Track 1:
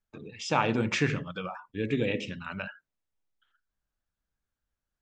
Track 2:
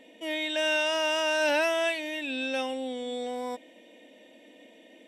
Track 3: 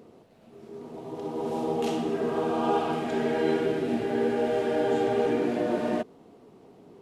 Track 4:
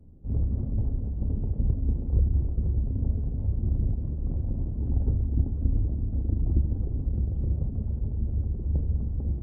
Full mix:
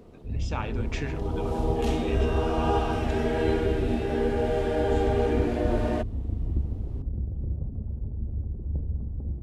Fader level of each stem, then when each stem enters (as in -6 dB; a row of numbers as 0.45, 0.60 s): -8.0, -16.5, -0.5, -3.5 dB; 0.00, 1.55, 0.00, 0.00 s